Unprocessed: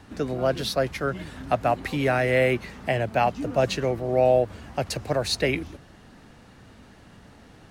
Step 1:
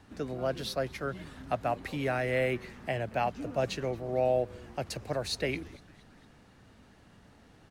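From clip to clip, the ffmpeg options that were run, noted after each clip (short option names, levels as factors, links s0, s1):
-filter_complex "[0:a]asplit=5[s0][s1][s2][s3][s4];[s1]adelay=227,afreqshift=-140,volume=0.0631[s5];[s2]adelay=454,afreqshift=-280,volume=0.0372[s6];[s3]adelay=681,afreqshift=-420,volume=0.0219[s7];[s4]adelay=908,afreqshift=-560,volume=0.013[s8];[s0][s5][s6][s7][s8]amix=inputs=5:normalize=0,volume=0.398"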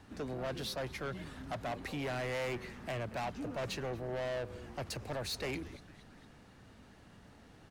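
-af "asoftclip=type=tanh:threshold=0.02"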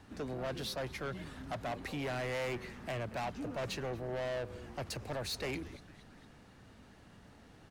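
-af anull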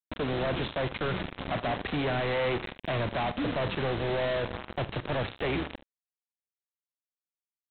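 -af "equalizer=f=3000:w=0.48:g=-4.5,aresample=8000,acrusher=bits=6:mix=0:aa=0.000001,aresample=44100,aecho=1:1:45|74:0.133|0.141,volume=2.82"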